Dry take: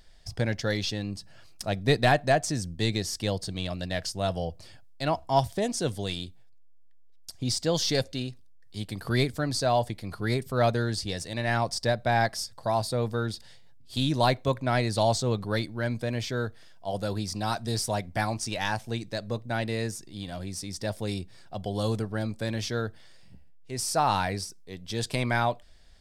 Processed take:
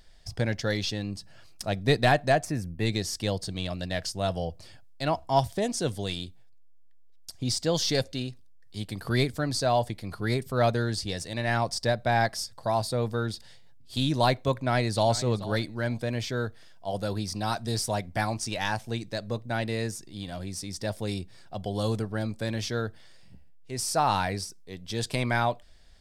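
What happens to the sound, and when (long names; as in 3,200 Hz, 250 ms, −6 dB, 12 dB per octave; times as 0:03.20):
0:02.44–0:02.86: gain on a spectral selection 2,800–9,400 Hz −11 dB
0:14.53–0:15.14: delay throw 430 ms, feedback 20%, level −16 dB
0:17.00–0:17.56: notch filter 7,300 Hz, Q 11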